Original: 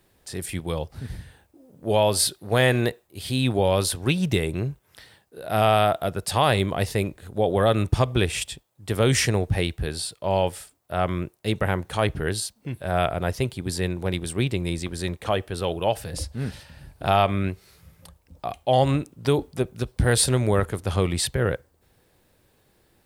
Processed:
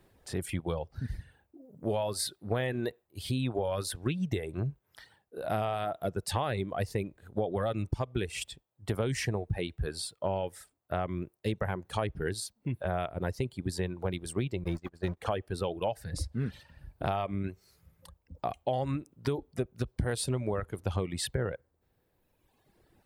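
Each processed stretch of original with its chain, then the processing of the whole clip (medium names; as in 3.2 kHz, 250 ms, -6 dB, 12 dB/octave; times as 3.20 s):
14.64–15.17 s: jump at every zero crossing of -31 dBFS + gate -27 dBFS, range -31 dB + treble shelf 3.6 kHz -8 dB
whole clip: reverb removal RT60 1.5 s; treble shelf 2.3 kHz -8.5 dB; compression, threshold -29 dBFS; trim +1 dB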